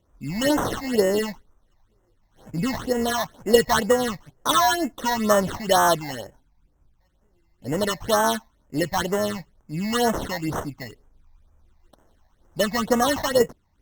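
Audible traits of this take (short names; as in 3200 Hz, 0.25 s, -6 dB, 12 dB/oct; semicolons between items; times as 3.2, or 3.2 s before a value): aliases and images of a low sample rate 2400 Hz, jitter 0%; phasing stages 8, 2.1 Hz, lowest notch 390–4300 Hz; Opus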